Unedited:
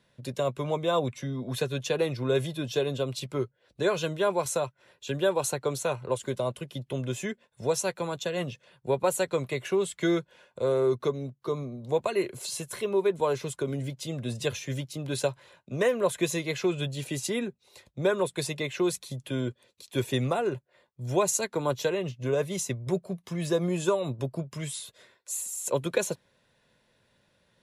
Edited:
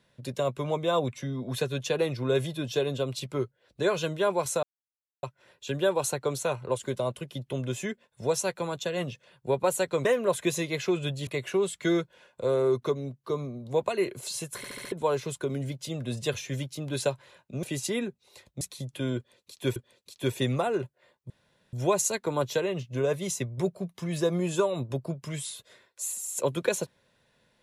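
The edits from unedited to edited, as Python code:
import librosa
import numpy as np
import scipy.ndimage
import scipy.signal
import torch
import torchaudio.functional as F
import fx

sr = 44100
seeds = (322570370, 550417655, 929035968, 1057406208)

y = fx.edit(x, sr, fx.insert_silence(at_s=4.63, length_s=0.6),
    fx.stutter_over(start_s=12.75, slice_s=0.07, count=5),
    fx.move(start_s=15.81, length_s=1.22, to_s=9.45),
    fx.cut(start_s=18.01, length_s=0.91),
    fx.repeat(start_s=19.48, length_s=0.59, count=2),
    fx.insert_room_tone(at_s=21.02, length_s=0.43), tone=tone)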